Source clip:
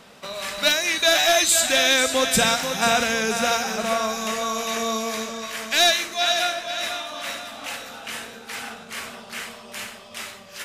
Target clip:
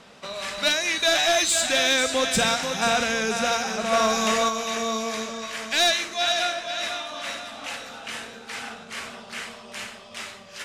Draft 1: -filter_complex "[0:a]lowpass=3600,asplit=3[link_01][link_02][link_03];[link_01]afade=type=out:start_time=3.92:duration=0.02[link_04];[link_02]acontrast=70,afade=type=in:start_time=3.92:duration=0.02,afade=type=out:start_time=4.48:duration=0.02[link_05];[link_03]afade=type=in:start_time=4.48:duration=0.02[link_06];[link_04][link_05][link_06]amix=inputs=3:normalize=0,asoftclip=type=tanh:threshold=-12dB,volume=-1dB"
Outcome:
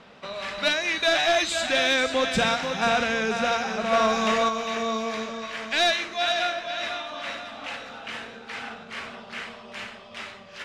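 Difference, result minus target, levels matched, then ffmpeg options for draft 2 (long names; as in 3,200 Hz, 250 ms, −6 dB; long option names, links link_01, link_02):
8,000 Hz band −8.5 dB
-filter_complex "[0:a]lowpass=8400,asplit=3[link_01][link_02][link_03];[link_01]afade=type=out:start_time=3.92:duration=0.02[link_04];[link_02]acontrast=70,afade=type=in:start_time=3.92:duration=0.02,afade=type=out:start_time=4.48:duration=0.02[link_05];[link_03]afade=type=in:start_time=4.48:duration=0.02[link_06];[link_04][link_05][link_06]amix=inputs=3:normalize=0,asoftclip=type=tanh:threshold=-12dB,volume=-1dB"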